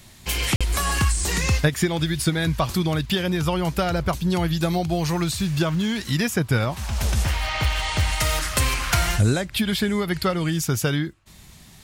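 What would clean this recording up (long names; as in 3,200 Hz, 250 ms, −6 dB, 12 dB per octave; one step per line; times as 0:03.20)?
repair the gap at 0:00.56, 46 ms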